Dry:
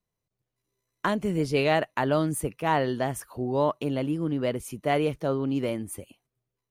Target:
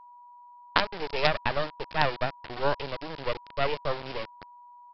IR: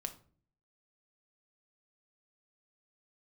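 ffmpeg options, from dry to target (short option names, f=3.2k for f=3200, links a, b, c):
-filter_complex "[0:a]highpass=f=460:w=0.5412,highpass=f=460:w=1.3066,asplit=2[a][b];[b]acompressor=mode=upward:threshold=-30dB:ratio=2.5,volume=-3dB[c];[a][c]amix=inputs=2:normalize=0,tremolo=f=3.6:d=0.35,atempo=1.4,aresample=11025,acrusher=bits=3:dc=4:mix=0:aa=0.000001,aresample=44100,aeval=exprs='val(0)+0.00398*sin(2*PI*1000*n/s)':c=same,asetrate=42777,aresample=44100"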